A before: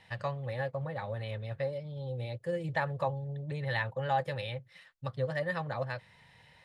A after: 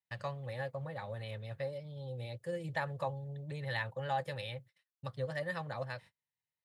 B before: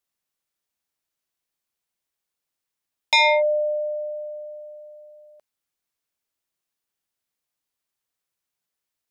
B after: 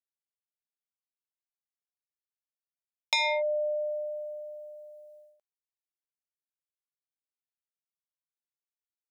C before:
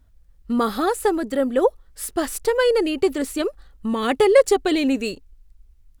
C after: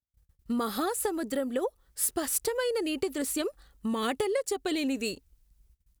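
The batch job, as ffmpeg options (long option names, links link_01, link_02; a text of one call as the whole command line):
ffmpeg -i in.wav -af "acompressor=threshold=-21dB:ratio=10,highshelf=frequency=5300:gain=9.5,agate=range=-36dB:threshold=-49dB:ratio=16:detection=peak,highpass=47,volume=-5dB" out.wav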